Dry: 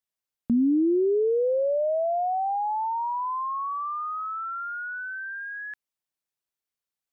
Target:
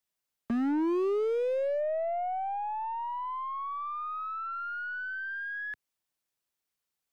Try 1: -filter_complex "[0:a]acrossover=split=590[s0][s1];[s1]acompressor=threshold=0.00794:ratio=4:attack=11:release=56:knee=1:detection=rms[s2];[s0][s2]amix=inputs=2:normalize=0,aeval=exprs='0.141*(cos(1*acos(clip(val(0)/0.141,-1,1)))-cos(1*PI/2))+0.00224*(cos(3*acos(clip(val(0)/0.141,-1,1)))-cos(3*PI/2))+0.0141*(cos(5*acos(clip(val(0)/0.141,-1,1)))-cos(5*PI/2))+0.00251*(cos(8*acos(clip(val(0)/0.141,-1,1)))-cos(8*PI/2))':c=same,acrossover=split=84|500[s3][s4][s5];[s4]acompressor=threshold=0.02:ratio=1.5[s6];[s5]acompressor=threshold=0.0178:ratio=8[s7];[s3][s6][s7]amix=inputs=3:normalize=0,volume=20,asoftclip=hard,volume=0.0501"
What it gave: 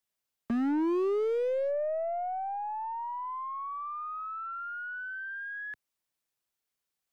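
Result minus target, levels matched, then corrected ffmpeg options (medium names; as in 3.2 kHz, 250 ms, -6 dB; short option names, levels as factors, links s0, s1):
compression: peak gain reduction +7.5 dB
-filter_complex "[0:a]acrossover=split=590[s0][s1];[s1]acompressor=threshold=0.0251:ratio=4:attack=11:release=56:knee=1:detection=rms[s2];[s0][s2]amix=inputs=2:normalize=0,aeval=exprs='0.141*(cos(1*acos(clip(val(0)/0.141,-1,1)))-cos(1*PI/2))+0.00224*(cos(3*acos(clip(val(0)/0.141,-1,1)))-cos(3*PI/2))+0.0141*(cos(5*acos(clip(val(0)/0.141,-1,1)))-cos(5*PI/2))+0.00251*(cos(8*acos(clip(val(0)/0.141,-1,1)))-cos(8*PI/2))':c=same,acrossover=split=84|500[s3][s4][s5];[s4]acompressor=threshold=0.02:ratio=1.5[s6];[s5]acompressor=threshold=0.0178:ratio=8[s7];[s3][s6][s7]amix=inputs=3:normalize=0,volume=20,asoftclip=hard,volume=0.0501"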